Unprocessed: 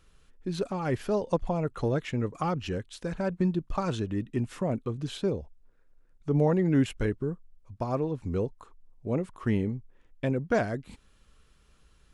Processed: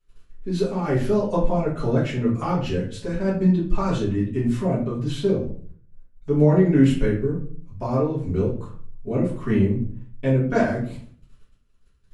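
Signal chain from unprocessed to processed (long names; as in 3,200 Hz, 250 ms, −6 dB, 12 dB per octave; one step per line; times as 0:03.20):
noise gate −56 dBFS, range −18 dB
rectangular room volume 46 cubic metres, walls mixed, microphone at 1.8 metres
level −4.5 dB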